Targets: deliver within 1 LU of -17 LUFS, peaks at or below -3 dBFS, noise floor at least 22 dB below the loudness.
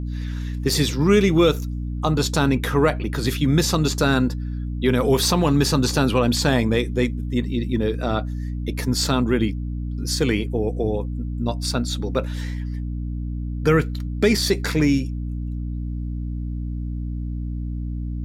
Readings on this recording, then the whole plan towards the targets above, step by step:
hum 60 Hz; harmonics up to 300 Hz; hum level -24 dBFS; loudness -22.5 LUFS; peak -5.5 dBFS; loudness target -17.0 LUFS
-> de-hum 60 Hz, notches 5; gain +5.5 dB; limiter -3 dBFS

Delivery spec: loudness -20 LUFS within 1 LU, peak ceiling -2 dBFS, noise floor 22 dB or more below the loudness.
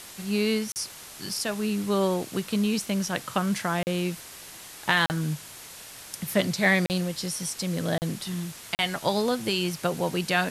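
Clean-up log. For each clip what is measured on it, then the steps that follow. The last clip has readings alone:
dropouts 6; longest dropout 39 ms; noise floor -44 dBFS; noise floor target -49 dBFS; loudness -27.0 LUFS; peak -4.5 dBFS; loudness target -20.0 LUFS
-> interpolate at 0.72/3.83/5.06/6.86/7.98/8.75, 39 ms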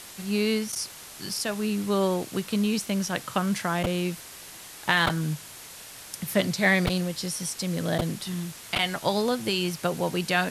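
dropouts 0; noise floor -44 dBFS; noise floor target -49 dBFS
-> denoiser 6 dB, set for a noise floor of -44 dBFS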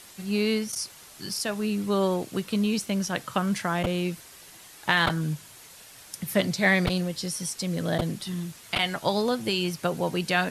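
noise floor -49 dBFS; loudness -27.0 LUFS; peak -5.0 dBFS; loudness target -20.0 LUFS
-> gain +7 dB; limiter -2 dBFS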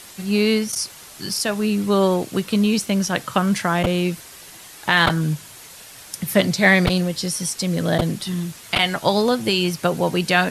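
loudness -20.0 LUFS; peak -2.0 dBFS; noise floor -42 dBFS

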